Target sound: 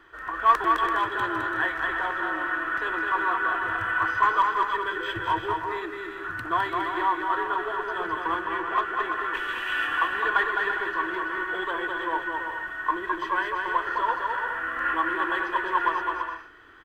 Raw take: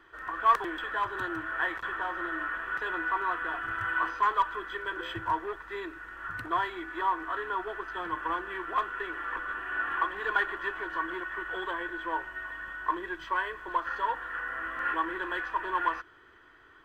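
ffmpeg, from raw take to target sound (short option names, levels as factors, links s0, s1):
-filter_complex "[0:a]asettb=1/sr,asplit=3[s0][s1][s2];[s0]atrim=end=8.414[s3];[s1]atrim=start=8.41:end=8.82,asetpts=PTS-STARTPTS,afade=t=in:d=0.004:c=qsin,afade=t=out:st=0.406:d=0.004:c=qsin,lowpass=7100[s4];[s2]atrim=start=8.816[s5];[s3][s4]acrossfade=d=0.004:c1=hsin:c2=qsin[s6];[s6][s5]acrossfade=d=0.004:c1=qsin:c2=hsin,asplit=3[s7][s8][s9];[s7]afade=t=out:st=9.33:d=0.02[s10];[s8]highshelf=f=2000:t=q:w=1.5:g=12,afade=t=in:st=9.33:d=0.02,afade=t=out:st=9.86:d=0.02[s11];[s9]afade=t=in:st=9.86:d=0.02[s12];[s10][s11][s12]amix=inputs=3:normalize=0,aecho=1:1:210|336|411.6|457|484.2:0.631|0.398|0.251|0.158|0.1,volume=1.5"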